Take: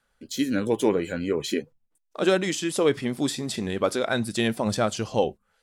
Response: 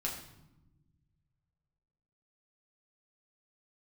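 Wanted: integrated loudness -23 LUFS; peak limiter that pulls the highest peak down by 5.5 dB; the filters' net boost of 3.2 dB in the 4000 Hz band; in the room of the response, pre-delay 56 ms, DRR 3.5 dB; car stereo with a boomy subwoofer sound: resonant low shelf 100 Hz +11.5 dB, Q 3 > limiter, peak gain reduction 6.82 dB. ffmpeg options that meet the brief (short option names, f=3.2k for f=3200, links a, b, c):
-filter_complex "[0:a]equalizer=f=4k:t=o:g=4,alimiter=limit=-14.5dB:level=0:latency=1,asplit=2[a][b];[1:a]atrim=start_sample=2205,adelay=56[c];[b][c]afir=irnorm=-1:irlink=0,volume=-6dB[d];[a][d]amix=inputs=2:normalize=0,lowshelf=f=100:t=q:w=3:g=11.5,volume=5dB,alimiter=limit=-13dB:level=0:latency=1"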